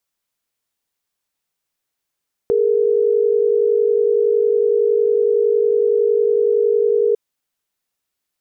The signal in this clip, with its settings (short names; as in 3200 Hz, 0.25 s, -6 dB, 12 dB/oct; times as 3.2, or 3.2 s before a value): chord G#4/A#4 sine, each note -15.5 dBFS 4.65 s